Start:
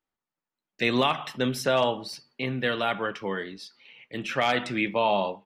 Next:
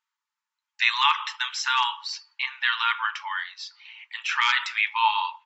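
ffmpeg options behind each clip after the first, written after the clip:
ffmpeg -i in.wav -af "afftfilt=real='re*between(b*sr/4096,850,7700)':imag='im*between(b*sr/4096,850,7700)':win_size=4096:overlap=0.75,volume=6dB" out.wav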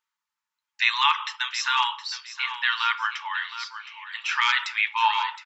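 ffmpeg -i in.wav -af "aecho=1:1:716|1432|2148:0.251|0.0628|0.0157" out.wav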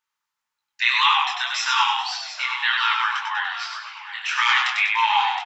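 ffmpeg -i in.wav -filter_complex "[0:a]asplit=7[link_01][link_02][link_03][link_04][link_05][link_06][link_07];[link_02]adelay=97,afreqshift=-44,volume=-3.5dB[link_08];[link_03]adelay=194,afreqshift=-88,volume=-10.2dB[link_09];[link_04]adelay=291,afreqshift=-132,volume=-17dB[link_10];[link_05]adelay=388,afreqshift=-176,volume=-23.7dB[link_11];[link_06]adelay=485,afreqshift=-220,volume=-30.5dB[link_12];[link_07]adelay=582,afreqshift=-264,volume=-37.2dB[link_13];[link_01][link_08][link_09][link_10][link_11][link_12][link_13]amix=inputs=7:normalize=0,flanger=delay=17.5:depth=7.4:speed=1.8,volume=5dB" out.wav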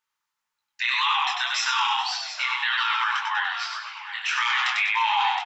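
ffmpeg -i in.wav -af "alimiter=limit=-14dB:level=0:latency=1:release=17" out.wav

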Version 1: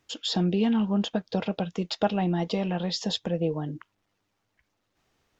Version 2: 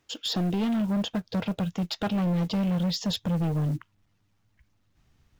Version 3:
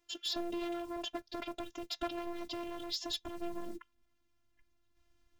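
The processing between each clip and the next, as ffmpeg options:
ffmpeg -i in.wav -af "asubboost=boost=6.5:cutoff=180,volume=23dB,asoftclip=hard,volume=-23dB,acrusher=bits=7:mode=log:mix=0:aa=0.000001" out.wav
ffmpeg -i in.wav -af "afftfilt=real='hypot(re,im)*cos(PI*b)':imag='0':win_size=512:overlap=0.75,volume=-3dB" out.wav

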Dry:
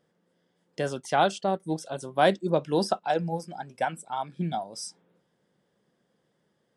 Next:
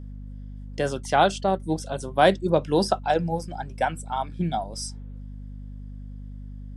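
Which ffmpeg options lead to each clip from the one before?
ffmpeg -i in.wav -af "aeval=exprs='val(0)+0.01*(sin(2*PI*50*n/s)+sin(2*PI*2*50*n/s)/2+sin(2*PI*3*50*n/s)/3+sin(2*PI*4*50*n/s)/4+sin(2*PI*5*50*n/s)/5)':channel_layout=same,volume=3.5dB" out.wav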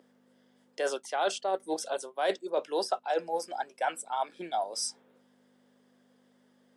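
ffmpeg -i in.wav -af "highpass=frequency=400:width=0.5412,highpass=frequency=400:width=1.3066,areverse,acompressor=threshold=-28dB:ratio=6,areverse,volume=1.5dB" out.wav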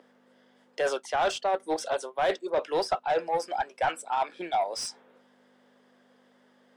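ffmpeg -i in.wav -filter_complex "[0:a]asplit=2[link_01][link_02];[link_02]highpass=frequency=720:poles=1,volume=15dB,asoftclip=type=tanh:threshold=-16.5dB[link_03];[link_01][link_03]amix=inputs=2:normalize=0,lowpass=frequency=2300:poles=1,volume=-6dB" out.wav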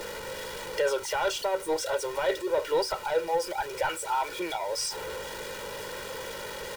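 ffmpeg -i in.wav -af "aeval=exprs='val(0)+0.5*0.02*sgn(val(0))':channel_layout=same,acompressor=threshold=-35dB:ratio=1.5,aecho=1:1:2.1:0.95" out.wav

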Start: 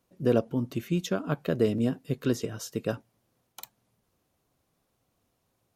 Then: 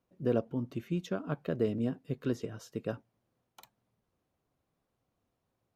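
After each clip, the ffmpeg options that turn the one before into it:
ffmpeg -i in.wav -af "highshelf=frequency=4300:gain=-11.5,volume=-5.5dB" out.wav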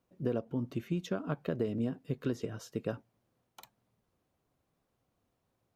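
ffmpeg -i in.wav -af "acompressor=threshold=-30dB:ratio=6,volume=2dB" out.wav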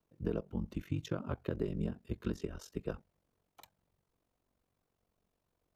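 ffmpeg -i in.wav -af "afreqshift=-50,aeval=exprs='val(0)*sin(2*PI*23*n/s)':channel_layout=same" out.wav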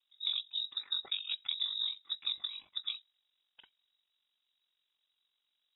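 ffmpeg -i in.wav -af "lowpass=frequency=3300:width_type=q:width=0.5098,lowpass=frequency=3300:width_type=q:width=0.6013,lowpass=frequency=3300:width_type=q:width=0.9,lowpass=frequency=3300:width_type=q:width=2.563,afreqshift=-3900" out.wav

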